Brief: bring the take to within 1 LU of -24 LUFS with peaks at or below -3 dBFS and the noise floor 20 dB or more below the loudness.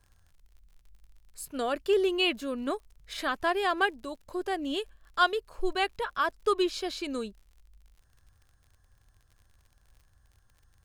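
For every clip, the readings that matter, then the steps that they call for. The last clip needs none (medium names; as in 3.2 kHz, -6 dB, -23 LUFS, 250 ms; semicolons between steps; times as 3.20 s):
tick rate 44 per s; loudness -30.0 LUFS; peak level -12.0 dBFS; loudness target -24.0 LUFS
-> de-click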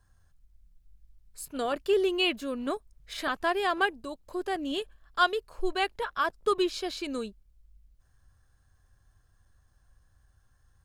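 tick rate 0.74 per s; loudness -30.0 LUFS; peak level -12.0 dBFS; loudness target -24.0 LUFS
-> trim +6 dB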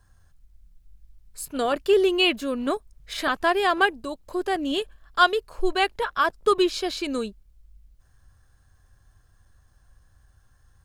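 loudness -24.0 LUFS; peak level -6.0 dBFS; noise floor -60 dBFS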